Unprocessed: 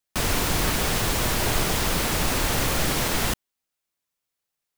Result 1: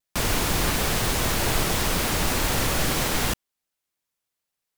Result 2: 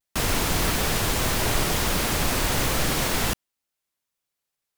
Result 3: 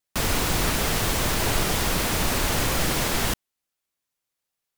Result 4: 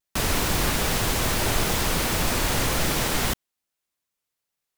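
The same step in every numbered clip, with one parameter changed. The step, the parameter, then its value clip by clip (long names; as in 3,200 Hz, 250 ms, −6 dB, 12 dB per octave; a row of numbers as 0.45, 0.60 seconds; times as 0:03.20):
pitch vibrato, speed: 4.1, 1.7, 15, 2.5 Hertz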